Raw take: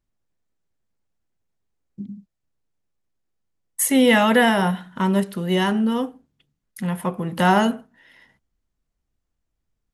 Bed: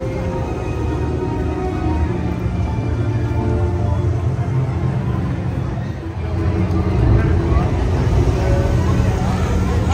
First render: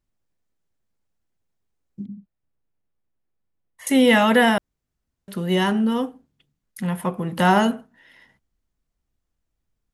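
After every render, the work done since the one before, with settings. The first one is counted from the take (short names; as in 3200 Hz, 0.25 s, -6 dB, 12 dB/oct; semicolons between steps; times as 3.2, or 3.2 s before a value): 2.06–3.87 air absorption 310 m; 4.58–5.28 room tone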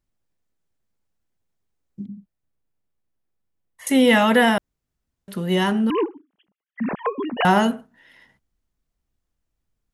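5.9–7.45 sine-wave speech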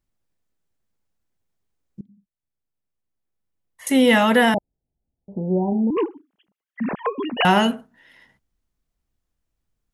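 2.01–3.9 fade in, from -22 dB; 4.54–5.97 steep low-pass 880 Hz 96 dB/oct; 7.18–7.75 bell 2700 Hz +7.5 dB 0.5 oct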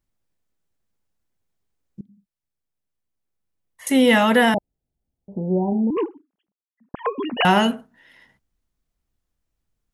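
5.71–6.94 studio fade out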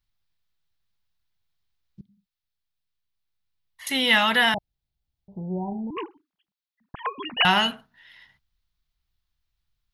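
graphic EQ 250/500/4000/8000 Hz -11/-11/+9/-9 dB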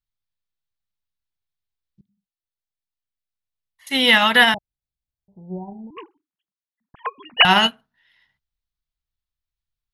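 maximiser +11 dB; upward expander 2.5:1, over -22 dBFS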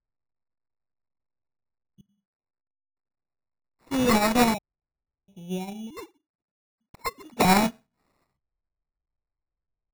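median filter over 25 samples; sample-and-hold 14×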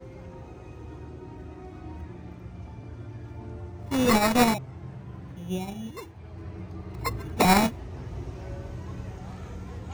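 add bed -21.5 dB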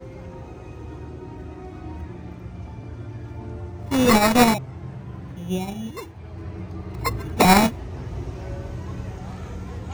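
gain +5 dB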